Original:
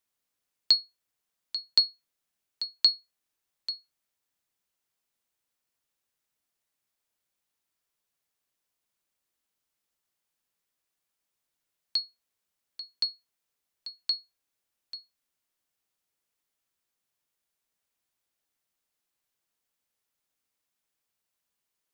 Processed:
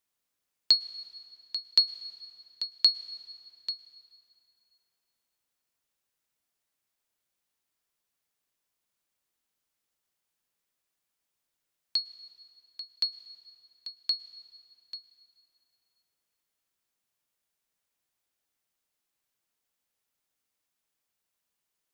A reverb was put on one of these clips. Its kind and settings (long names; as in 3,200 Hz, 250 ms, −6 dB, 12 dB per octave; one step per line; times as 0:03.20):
dense smooth reverb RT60 3.2 s, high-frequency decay 0.7×, pre-delay 95 ms, DRR 15.5 dB